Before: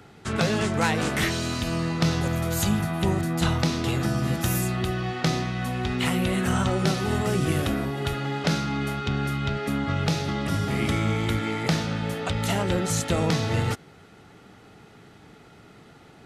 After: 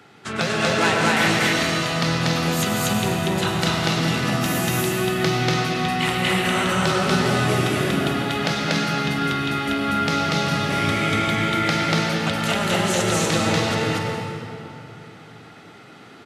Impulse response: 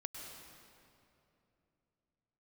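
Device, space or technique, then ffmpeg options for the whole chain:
stadium PA: -filter_complex "[0:a]highpass=140,equalizer=f=2.4k:t=o:w=2.9:g=5.5,aecho=1:1:239.1|288.6:1|0.282[a];[1:a]atrim=start_sample=2205[b];[a][b]afir=irnorm=-1:irlink=0,volume=2.5dB"

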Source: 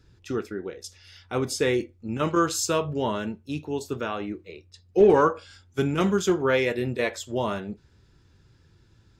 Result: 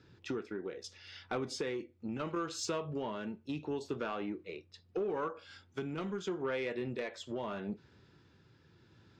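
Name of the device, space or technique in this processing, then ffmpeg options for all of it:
AM radio: -af "highpass=140,lowpass=4.3k,acompressor=threshold=-33dB:ratio=8,asoftclip=type=tanh:threshold=-27.5dB,tremolo=f=0.76:d=0.29,volume=1.5dB"

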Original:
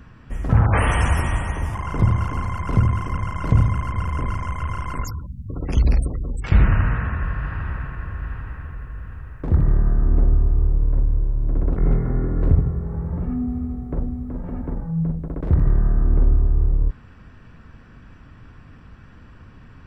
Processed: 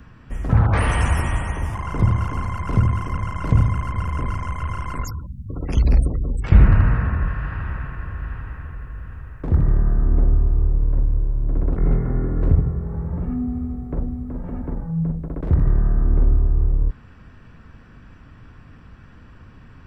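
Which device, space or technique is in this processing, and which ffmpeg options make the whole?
one-band saturation: -filter_complex "[0:a]asettb=1/sr,asplit=3[a][b][c];[a]atrim=end=5.914[d];[b]atrim=start=5.91:end=7.28,asetpts=PTS-STARTPTS,afade=t=in:d=0.004:c=qsin,afade=t=out:st=1.366:d=0.004:c=qsin,tiltshelf=f=1.2k:g=3.5[e];[c]atrim=start=7.276[f];[d][e]acrossfade=d=0.004:c1=hsin:c2=qsin[g];[g][f]acrossfade=d=0.004:c1=qsin:c2=hsin,acrossover=split=350|3900[h][i][j];[i]asoftclip=type=tanh:threshold=-18.5dB[k];[h][k][j]amix=inputs=3:normalize=0"

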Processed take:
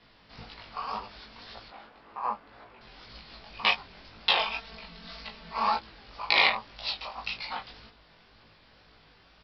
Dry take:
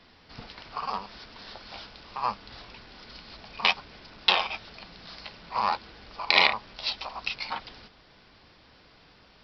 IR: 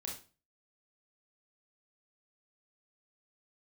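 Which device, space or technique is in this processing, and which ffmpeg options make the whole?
double-tracked vocal: -filter_complex "[0:a]equalizer=f=330:w=1.5:g=-3,asettb=1/sr,asplit=3[a][b][c];[a]atrim=end=1.684[d];[b]atrim=start=1.68:end=2.81,asetpts=PTS-STARTPTS,afade=t=in:d=0.004:c=qsin,afade=t=out:st=1.126:d=0.004:c=qsin,acrossover=split=180 2100:gain=0.2 1 0.126[e][f][g];[e][f][g]amix=inputs=3:normalize=0[h];[c]atrim=start=2.806[i];[d][h]acrossfade=d=0.004:c1=hsin:c2=qsin[j];[j][i]acrossfade=d=0.004:c1=qsin:c2=hsin,asettb=1/sr,asplit=3[k][l][m];[k]atrim=end=4.374[n];[l]atrim=start=4.37:end=5.77,asetpts=PTS-STARTPTS,afade=t=in:d=0.004:c=qsin,afade=t=out:st=1.396:d=0.004:c=qsin,aecho=1:1:4.5:0.78,atrim=end_sample=61740[o];[m]atrim=start=5.766[p];[n][o]acrossfade=d=0.004:c1=hsin:c2=qsin[q];[q][p]acrossfade=d=0.004:c1=qsin:c2=hsin,lowpass=f=5.3k:w=0.5412,lowpass=f=5.3k:w=1.3066,asplit=2[r][s];[s]adelay=18,volume=-4dB[t];[r][t]amix=inputs=2:normalize=0,flanger=delay=18:depth=5.2:speed=1.9"

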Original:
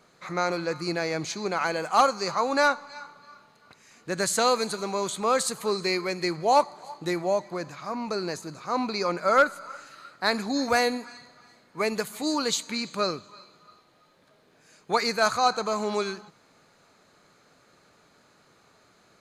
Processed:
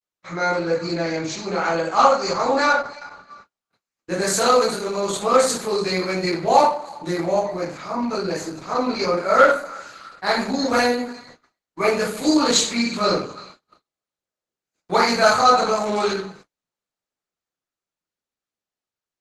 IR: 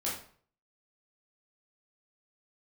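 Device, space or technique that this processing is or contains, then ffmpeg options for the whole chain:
speakerphone in a meeting room: -filter_complex "[0:a]asplit=3[a][b][c];[a]afade=t=out:st=2.86:d=0.02[d];[b]highpass=89,afade=t=in:st=2.86:d=0.02,afade=t=out:st=4.12:d=0.02[e];[c]afade=t=in:st=4.12:d=0.02[f];[d][e][f]amix=inputs=3:normalize=0[g];[1:a]atrim=start_sample=2205[h];[g][h]afir=irnorm=-1:irlink=0,dynaudnorm=f=420:g=11:m=10dB,agate=range=-43dB:threshold=-43dB:ratio=16:detection=peak" -ar 48000 -c:a libopus -b:a 12k

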